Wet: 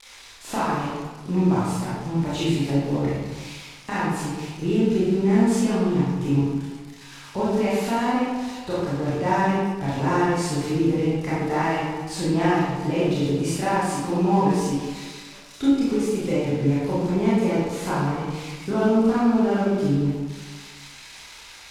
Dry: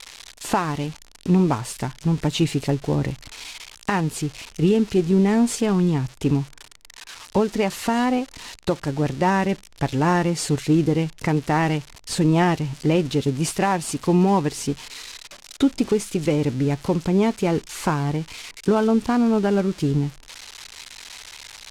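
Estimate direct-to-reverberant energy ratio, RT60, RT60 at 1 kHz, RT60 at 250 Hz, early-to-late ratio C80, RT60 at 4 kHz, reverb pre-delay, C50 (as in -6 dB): -9.5 dB, 1.5 s, 1.5 s, 1.4 s, 0.5 dB, 0.90 s, 23 ms, -3.0 dB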